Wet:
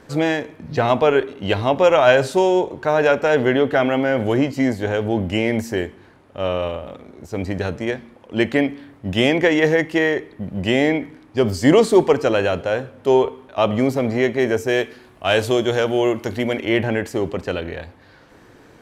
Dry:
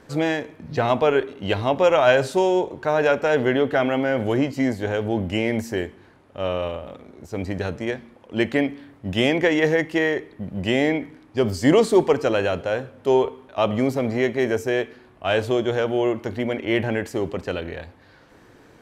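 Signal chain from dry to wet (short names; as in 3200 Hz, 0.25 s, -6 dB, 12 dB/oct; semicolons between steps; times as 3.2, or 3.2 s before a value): 14.69–16.69 high shelf 3900 Hz +9.5 dB; gain +3 dB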